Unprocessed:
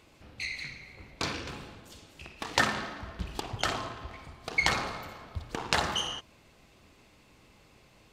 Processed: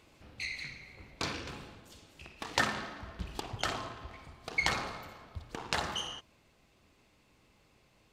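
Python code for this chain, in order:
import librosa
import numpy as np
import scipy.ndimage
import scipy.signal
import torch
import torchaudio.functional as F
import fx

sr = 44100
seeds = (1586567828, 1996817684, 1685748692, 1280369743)

y = fx.rider(x, sr, range_db=5, speed_s=2.0)
y = y * librosa.db_to_amplitude(-5.5)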